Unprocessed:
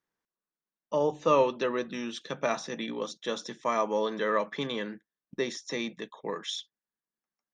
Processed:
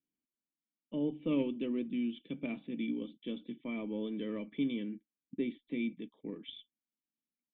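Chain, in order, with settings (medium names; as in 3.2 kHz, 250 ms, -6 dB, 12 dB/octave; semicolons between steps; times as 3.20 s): Chebyshev shaper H 2 -22 dB, 3 -20 dB, 4 -26 dB, 5 -33 dB, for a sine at -11.5 dBFS; cascade formant filter i; trim +7.5 dB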